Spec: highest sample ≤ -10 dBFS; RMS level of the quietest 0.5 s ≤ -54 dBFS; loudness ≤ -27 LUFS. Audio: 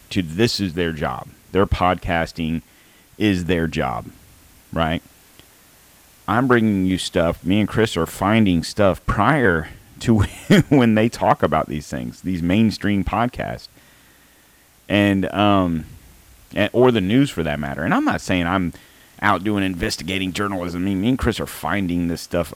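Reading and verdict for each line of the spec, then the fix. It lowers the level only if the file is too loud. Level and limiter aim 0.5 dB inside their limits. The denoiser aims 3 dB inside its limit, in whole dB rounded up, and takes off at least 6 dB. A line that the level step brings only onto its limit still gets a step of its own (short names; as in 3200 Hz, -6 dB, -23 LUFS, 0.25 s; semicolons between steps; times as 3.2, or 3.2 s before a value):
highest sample -3.0 dBFS: fail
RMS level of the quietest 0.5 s -53 dBFS: fail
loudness -20.0 LUFS: fail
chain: gain -7.5 dB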